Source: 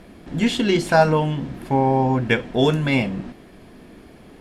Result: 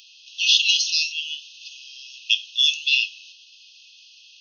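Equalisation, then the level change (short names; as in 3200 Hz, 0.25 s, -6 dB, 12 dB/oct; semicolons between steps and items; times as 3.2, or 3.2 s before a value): brick-wall FIR band-pass 2500–6600 Hz; high shelf 5200 Hz +11.5 dB; +9.0 dB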